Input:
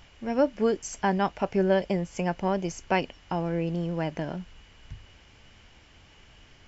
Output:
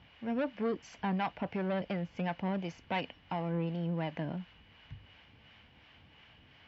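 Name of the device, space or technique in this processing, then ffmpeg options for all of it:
guitar amplifier with harmonic tremolo: -filter_complex "[0:a]acrossover=split=520[a][b];[a]aeval=exprs='val(0)*(1-0.5/2+0.5/2*cos(2*PI*2.8*n/s))':c=same[c];[b]aeval=exprs='val(0)*(1-0.5/2-0.5/2*cos(2*PI*2.8*n/s))':c=same[d];[c][d]amix=inputs=2:normalize=0,asoftclip=type=tanh:threshold=-25dB,highpass=89,equalizer=f=380:t=q:w=4:g=-7,equalizer=f=590:t=q:w=4:g=-3,equalizer=f=1.3k:t=q:w=4:g=-3,lowpass=f=3.8k:w=0.5412,lowpass=f=3.8k:w=1.3066"

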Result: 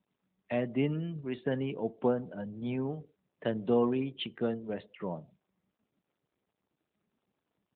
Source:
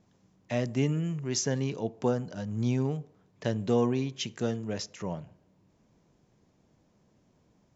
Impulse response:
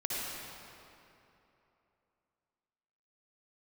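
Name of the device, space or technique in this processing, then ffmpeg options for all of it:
mobile call with aggressive noise cancelling: -af "highpass=180,afftdn=nr=29:nf=-49" -ar 8000 -c:a libopencore_amrnb -b:a 12200

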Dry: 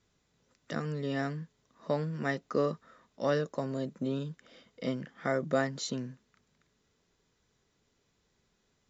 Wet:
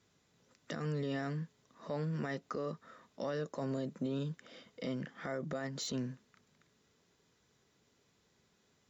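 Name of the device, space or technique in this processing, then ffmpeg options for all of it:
podcast mastering chain: -af "highpass=84,deesser=0.95,acompressor=threshold=-34dB:ratio=3,alimiter=level_in=6.5dB:limit=-24dB:level=0:latency=1:release=27,volume=-6.5dB,volume=2.5dB" -ar 48000 -c:a libmp3lame -b:a 96k

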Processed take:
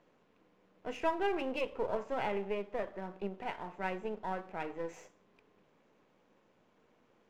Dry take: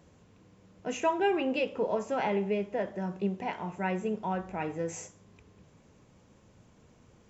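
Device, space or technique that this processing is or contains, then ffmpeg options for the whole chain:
crystal radio: -af "highpass=300,lowpass=3.3k,aeval=exprs='if(lt(val(0),0),0.447*val(0),val(0))':c=same,volume=-2dB"

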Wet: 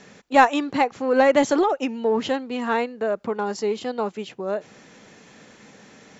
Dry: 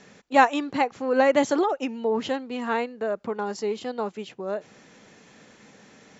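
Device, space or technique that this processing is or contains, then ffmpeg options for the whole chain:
parallel distortion: -filter_complex "[0:a]asplit=2[a][b];[b]asoftclip=type=hard:threshold=-20dB,volume=-12dB[c];[a][c]amix=inputs=2:normalize=0,volume=1.5dB"

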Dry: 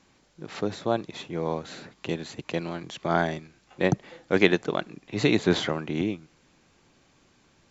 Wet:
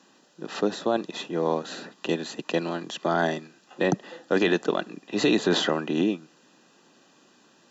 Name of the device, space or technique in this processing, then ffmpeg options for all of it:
PA system with an anti-feedback notch: -af "highpass=f=190:w=0.5412,highpass=f=190:w=1.3066,asuperstop=centerf=2200:order=12:qfactor=6.2,alimiter=limit=-16.5dB:level=0:latency=1:release=11,volume=4.5dB"

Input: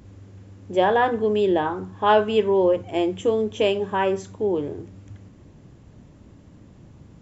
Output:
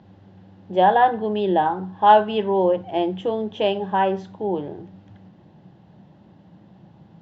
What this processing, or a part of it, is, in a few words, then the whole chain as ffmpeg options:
kitchen radio: -af "highpass=160,equalizer=f=180:t=q:w=4:g=7,equalizer=f=260:t=q:w=4:g=-8,equalizer=f=440:t=q:w=4:g=-6,equalizer=f=800:t=q:w=4:g=8,equalizer=f=1.2k:t=q:w=4:g=-6,equalizer=f=2.3k:t=q:w=4:g=-8,lowpass=f=4.1k:w=0.5412,lowpass=f=4.1k:w=1.3066,volume=1.5dB"

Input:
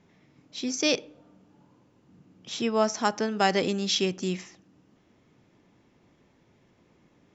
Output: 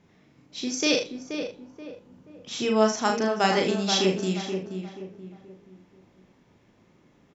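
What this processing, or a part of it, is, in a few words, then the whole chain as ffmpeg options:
slapback doubling: -filter_complex "[0:a]asettb=1/sr,asplit=3[a][b][c];[a]atrim=end=0.894[d];[b]atrim=start=0.89:end=2.94,asetpts=PTS-STARTPTS,afade=t=in:d=0.004:c=qsin,afade=t=out:st=2.046:d=0.004:c=qsin,asplit=2[e][f];[f]adelay=41,volume=-7dB[g];[e][g]amix=inputs=2:normalize=0,atrim=end_sample=90405[h];[c]atrim=start=2.936[i];[d][h]acrossfade=d=0.004:c1=hsin:c2=qsin[j];[j][i]acrossfade=d=0.004:c1=qsin:c2=hsin,asplit=2[k][l];[l]adelay=479,lowpass=f=1.6k:p=1,volume=-6.5dB,asplit=2[m][n];[n]adelay=479,lowpass=f=1.6k:p=1,volume=0.38,asplit=2[o][p];[p]adelay=479,lowpass=f=1.6k:p=1,volume=0.38,asplit=2[q][r];[r]adelay=479,lowpass=f=1.6k:p=1,volume=0.38[s];[k][m][o][q][s]amix=inputs=5:normalize=0,asplit=3[t][u][v];[u]adelay=37,volume=-4dB[w];[v]adelay=76,volume=-11dB[x];[t][w][x]amix=inputs=3:normalize=0"

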